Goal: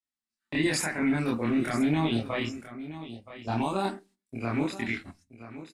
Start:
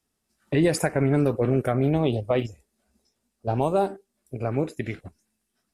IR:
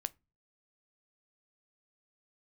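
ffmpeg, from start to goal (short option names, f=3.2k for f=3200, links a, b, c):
-filter_complex "[0:a]agate=range=-23dB:threshold=-53dB:ratio=16:detection=peak,equalizer=f=125:t=o:w=1:g=-5,equalizer=f=250:t=o:w=1:g=10,equalizer=f=500:t=o:w=1:g=-8,equalizer=f=1k:t=o:w=1:g=7,equalizer=f=2k:t=o:w=1:g=10,equalizer=f=4k:t=o:w=1:g=11,equalizer=f=8k:t=o:w=1:g=7,alimiter=limit=-13.5dB:level=0:latency=1:release=11,aecho=1:1:974:0.2,asplit=2[a][b];[1:a]atrim=start_sample=2205,afade=t=out:st=0.34:d=0.01,atrim=end_sample=15435,adelay=26[c];[b][c]afir=irnorm=-1:irlink=0,volume=3.5dB[d];[a][d]amix=inputs=2:normalize=0,volume=-9dB"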